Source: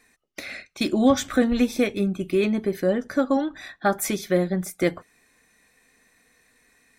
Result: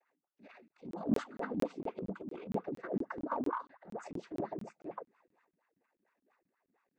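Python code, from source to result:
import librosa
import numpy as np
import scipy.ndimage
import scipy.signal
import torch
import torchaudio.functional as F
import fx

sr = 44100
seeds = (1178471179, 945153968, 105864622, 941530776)

y = fx.spec_repair(x, sr, seeds[0], start_s=3.37, length_s=0.28, low_hz=990.0, high_hz=2700.0, source='before')
y = fx.wah_lfo(y, sr, hz=4.3, low_hz=220.0, high_hz=1300.0, q=12.0)
y = fx.noise_vocoder(y, sr, seeds[1], bands=16)
y = fx.transient(y, sr, attack_db=-11, sustain_db=10)
y = fx.buffer_crackle(y, sr, first_s=0.68, period_s=0.23, block=1024, kind='zero')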